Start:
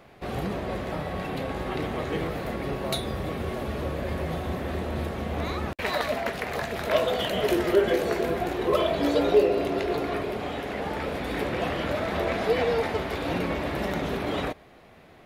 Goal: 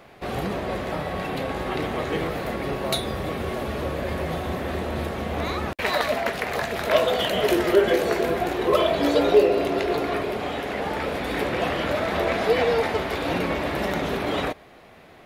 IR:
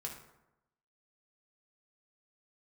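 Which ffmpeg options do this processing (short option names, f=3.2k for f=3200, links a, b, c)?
-af "lowshelf=f=280:g=-4.5,volume=4.5dB"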